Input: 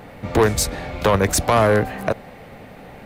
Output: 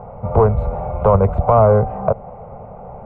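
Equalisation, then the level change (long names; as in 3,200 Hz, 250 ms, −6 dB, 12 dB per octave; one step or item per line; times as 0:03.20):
inverse Chebyshev low-pass filter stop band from 4,900 Hz, stop band 60 dB
dynamic equaliser 880 Hz, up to −4 dB, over −28 dBFS, Q 0.98
phaser with its sweep stopped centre 720 Hz, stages 4
+8.5 dB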